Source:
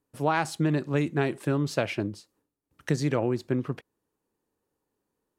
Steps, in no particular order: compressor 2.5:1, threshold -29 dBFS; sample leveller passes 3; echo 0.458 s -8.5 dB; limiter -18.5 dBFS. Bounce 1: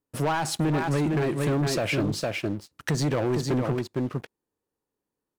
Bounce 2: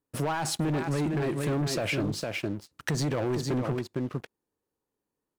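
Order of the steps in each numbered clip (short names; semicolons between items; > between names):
echo > compressor > limiter > sample leveller; limiter > echo > sample leveller > compressor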